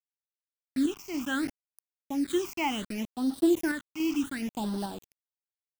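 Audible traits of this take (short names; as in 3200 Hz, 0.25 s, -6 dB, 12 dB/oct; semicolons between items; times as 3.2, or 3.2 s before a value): a quantiser's noise floor 6-bit, dither none; phasing stages 8, 0.68 Hz, lowest notch 490–2300 Hz; random-step tremolo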